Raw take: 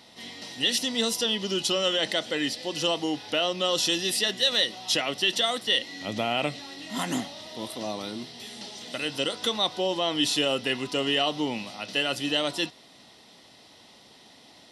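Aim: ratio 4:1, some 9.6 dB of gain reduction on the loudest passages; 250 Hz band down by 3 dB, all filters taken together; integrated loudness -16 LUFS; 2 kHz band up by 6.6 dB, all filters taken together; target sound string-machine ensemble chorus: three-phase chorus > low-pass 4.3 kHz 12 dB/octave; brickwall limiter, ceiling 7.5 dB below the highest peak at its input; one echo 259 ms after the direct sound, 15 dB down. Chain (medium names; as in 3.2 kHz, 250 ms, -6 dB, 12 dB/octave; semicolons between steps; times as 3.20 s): peaking EQ 250 Hz -4 dB; peaking EQ 2 kHz +9 dB; compression 4:1, threshold -28 dBFS; peak limiter -21.5 dBFS; delay 259 ms -15 dB; three-phase chorus; low-pass 4.3 kHz 12 dB/octave; trim +20.5 dB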